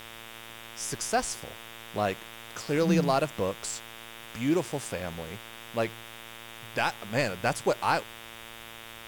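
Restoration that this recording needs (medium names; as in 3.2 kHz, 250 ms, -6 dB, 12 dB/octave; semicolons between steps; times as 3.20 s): de-hum 113.7 Hz, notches 33; noise reduction 28 dB, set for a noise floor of -46 dBFS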